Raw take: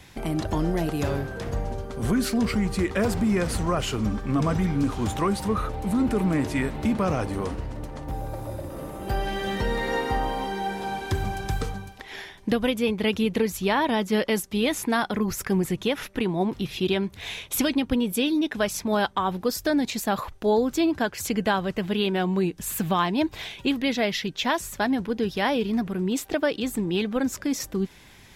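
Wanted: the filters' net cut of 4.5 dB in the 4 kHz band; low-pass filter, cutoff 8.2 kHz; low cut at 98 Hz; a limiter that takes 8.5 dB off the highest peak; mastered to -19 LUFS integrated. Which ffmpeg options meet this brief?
-af "highpass=98,lowpass=8200,equalizer=f=4000:t=o:g=-6,volume=3.55,alimiter=limit=0.335:level=0:latency=1"

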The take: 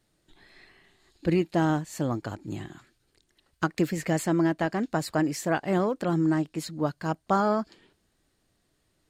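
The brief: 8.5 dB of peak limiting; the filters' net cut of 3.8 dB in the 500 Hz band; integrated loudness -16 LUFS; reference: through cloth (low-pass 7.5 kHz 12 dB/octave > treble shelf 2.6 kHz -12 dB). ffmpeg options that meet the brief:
-af "equalizer=f=500:t=o:g=-5,alimiter=limit=0.0841:level=0:latency=1,lowpass=7500,highshelf=f=2600:g=-12,volume=7.08"

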